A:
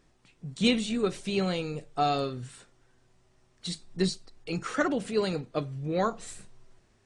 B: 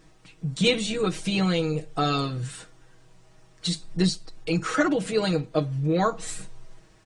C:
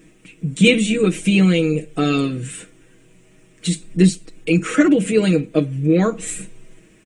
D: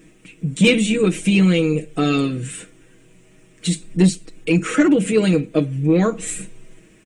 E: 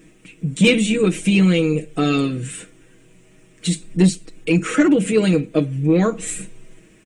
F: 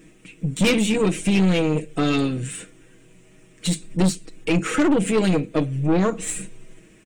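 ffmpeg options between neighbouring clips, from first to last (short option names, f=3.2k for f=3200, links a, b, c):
-filter_complex "[0:a]aecho=1:1:6.3:0.85,asplit=2[a][b];[b]acompressor=threshold=-34dB:ratio=6,volume=2dB[c];[a][c]amix=inputs=2:normalize=0"
-af "firequalizer=gain_entry='entry(110,0);entry(210,13);entry(470,7);entry(810,-5);entry(2400,11);entry(4500,-5);entry(7500,9)':delay=0.05:min_phase=1"
-af "acontrast=25,volume=-4.5dB"
-af anull
-af "aeval=exprs='(tanh(5.62*val(0)+0.45)-tanh(0.45))/5.62':c=same,volume=1dB"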